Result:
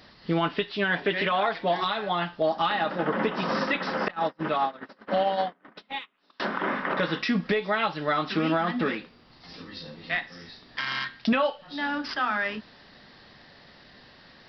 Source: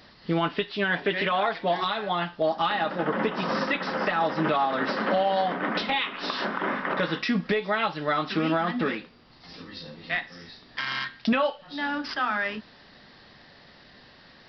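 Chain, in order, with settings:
0:04.08–0:06.40: noise gate −23 dBFS, range −36 dB

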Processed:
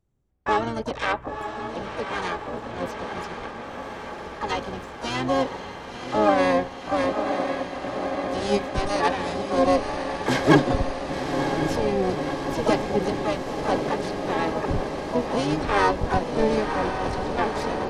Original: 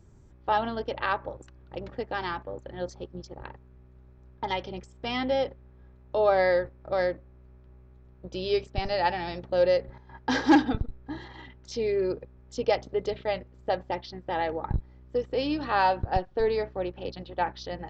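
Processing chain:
feedback delay with all-pass diffusion 1,026 ms, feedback 76%, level −6 dB
noise gate with hold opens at −33 dBFS
pitch-shifted copies added −12 semitones −4 dB, +5 semitones −5 dB, +12 semitones −9 dB

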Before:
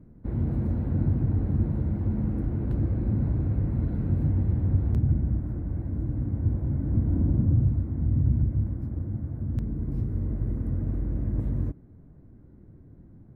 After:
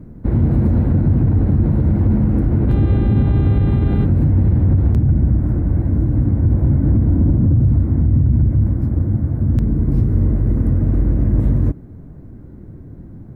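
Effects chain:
0:02.68–0:04.04: hum with harmonics 400 Hz, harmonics 10, −46 dBFS −8 dB per octave
boost into a limiter +20 dB
level −6 dB

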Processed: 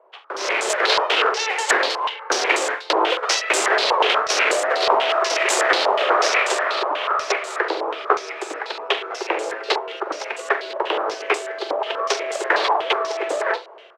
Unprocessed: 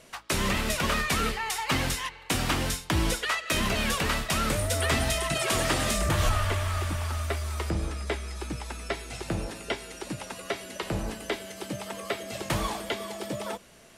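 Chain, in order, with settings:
phase distortion by the signal itself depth 0.72 ms
Butterworth high-pass 390 Hz 48 dB per octave
spectral tilt −3 dB per octave
automatic gain control gain up to 15 dB
ambience of single reflections 44 ms −11.5 dB, 70 ms −16.5 dB
low-pass on a step sequencer 8.2 Hz 960–7,600 Hz
level −3.5 dB

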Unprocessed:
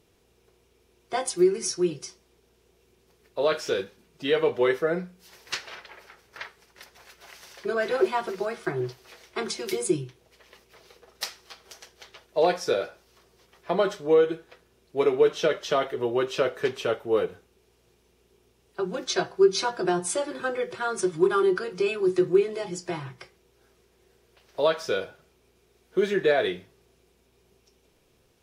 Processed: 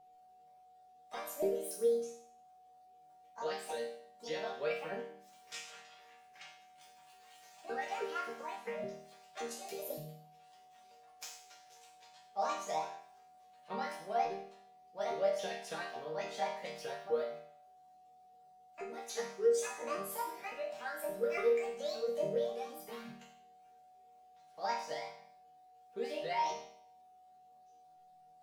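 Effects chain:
pitch shifter swept by a sawtooth +10 semitones, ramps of 285 ms
resonators tuned to a chord D#3 major, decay 0.62 s
steady tone 740 Hz −66 dBFS
level +7 dB

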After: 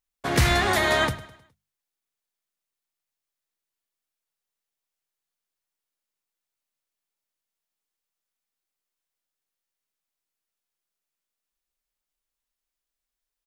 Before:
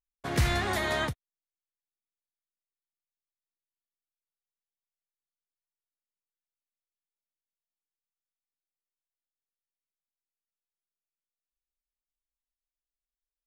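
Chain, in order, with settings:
low-shelf EQ 240 Hz −3.5 dB
mains-hum notches 50/100/150/200 Hz
on a send: repeating echo 104 ms, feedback 44%, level −17.5 dB
on the sum: level +8 dB

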